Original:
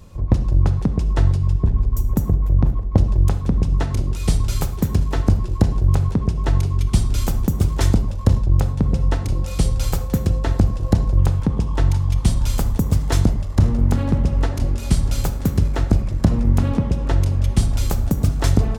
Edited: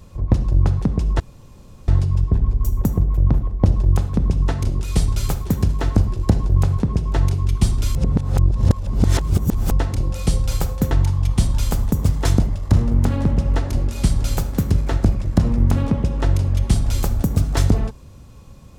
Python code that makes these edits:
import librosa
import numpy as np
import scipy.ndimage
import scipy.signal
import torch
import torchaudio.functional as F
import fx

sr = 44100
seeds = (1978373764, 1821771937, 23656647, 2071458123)

y = fx.edit(x, sr, fx.insert_room_tone(at_s=1.2, length_s=0.68),
    fx.reverse_span(start_s=7.27, length_s=1.76),
    fx.cut(start_s=10.23, length_s=1.55), tone=tone)